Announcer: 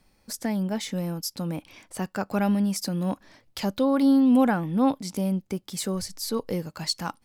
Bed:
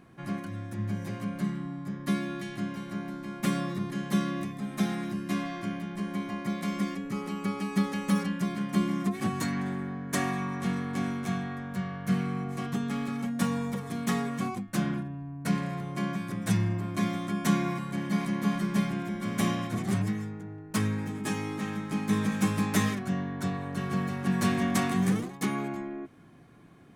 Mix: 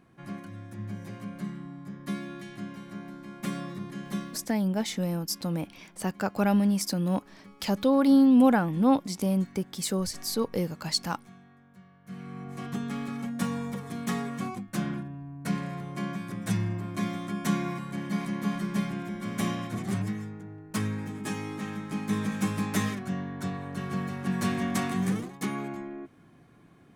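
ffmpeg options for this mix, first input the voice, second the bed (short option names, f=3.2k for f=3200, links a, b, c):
-filter_complex "[0:a]adelay=4050,volume=0dB[a];[1:a]volume=13.5dB,afade=t=out:st=4.1:d=0.37:silence=0.16788,afade=t=in:st=12.04:d=0.72:silence=0.11885[b];[a][b]amix=inputs=2:normalize=0"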